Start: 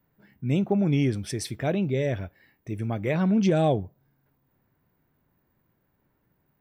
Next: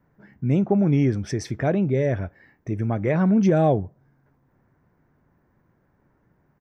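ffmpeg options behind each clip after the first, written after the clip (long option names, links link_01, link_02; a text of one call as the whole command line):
ffmpeg -i in.wav -filter_complex "[0:a]firequalizer=gain_entry='entry(1700,0);entry(2800,-10);entry(4100,-12);entry(6000,-4);entry(9100,-20)':delay=0.05:min_phase=1,asplit=2[link_01][link_02];[link_02]acompressor=threshold=-32dB:ratio=6,volume=-2dB[link_03];[link_01][link_03]amix=inputs=2:normalize=0,volume=2dB" out.wav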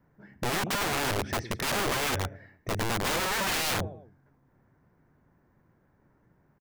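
ffmpeg -i in.wav -filter_complex "[0:a]aecho=1:1:104|208|312:0.133|0.0547|0.0224,acrossover=split=3700[link_01][link_02];[link_02]acompressor=threshold=-58dB:ratio=4:attack=1:release=60[link_03];[link_01][link_03]amix=inputs=2:normalize=0,aeval=exprs='(mod(12.6*val(0)+1,2)-1)/12.6':channel_layout=same,volume=-1.5dB" out.wav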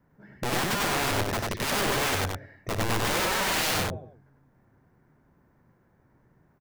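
ffmpeg -i in.wav -af "aecho=1:1:58.31|96.21:0.251|0.794" out.wav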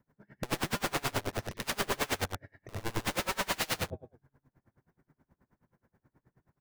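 ffmpeg -i in.wav -af "aeval=exprs='val(0)*pow(10,-28*(0.5-0.5*cos(2*PI*9.4*n/s))/20)':channel_layout=same,volume=-1dB" out.wav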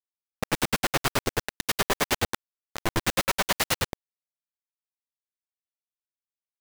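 ffmpeg -i in.wav -af "acrusher=bits=4:mix=0:aa=0.000001,volume=5.5dB" out.wav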